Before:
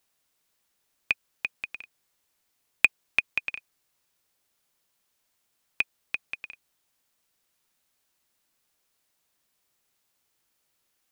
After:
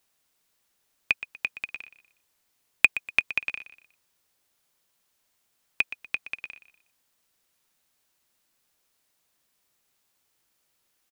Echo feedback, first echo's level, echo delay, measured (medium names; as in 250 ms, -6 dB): 34%, -14.0 dB, 121 ms